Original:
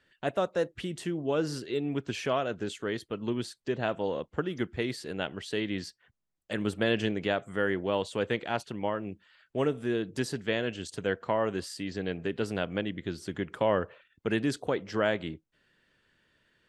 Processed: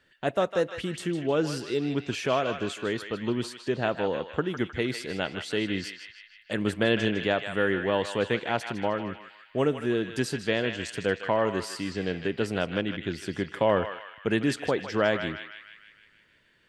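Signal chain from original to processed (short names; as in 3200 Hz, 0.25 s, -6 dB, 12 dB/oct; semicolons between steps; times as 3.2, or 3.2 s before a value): narrowing echo 0.155 s, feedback 64%, band-pass 2300 Hz, level -5.5 dB; gain +3 dB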